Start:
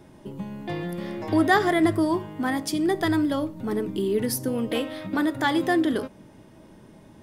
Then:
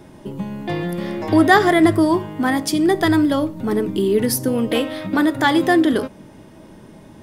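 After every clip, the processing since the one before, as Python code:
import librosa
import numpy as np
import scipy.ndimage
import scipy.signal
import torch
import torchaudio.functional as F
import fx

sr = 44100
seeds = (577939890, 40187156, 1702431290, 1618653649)

y = fx.hum_notches(x, sr, base_hz=60, count=2)
y = y * librosa.db_to_amplitude(7.0)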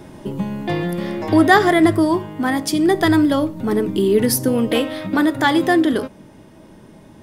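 y = fx.rider(x, sr, range_db=4, speed_s=2.0)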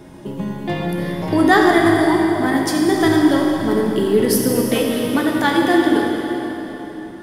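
y = fx.rev_plate(x, sr, seeds[0], rt60_s=3.9, hf_ratio=0.85, predelay_ms=0, drr_db=-0.5)
y = y * librosa.db_to_amplitude(-2.5)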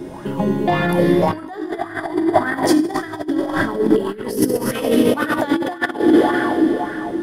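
y = fx.over_compress(x, sr, threshold_db=-21.0, ratio=-0.5)
y = fx.bell_lfo(y, sr, hz=1.8, low_hz=300.0, high_hz=1600.0, db=13)
y = y * librosa.db_to_amplitude(-1.5)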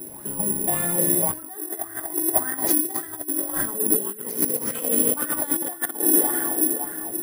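y = (np.kron(x[::4], np.eye(4)[0]) * 4)[:len(x)]
y = y * librosa.db_to_amplitude(-12.0)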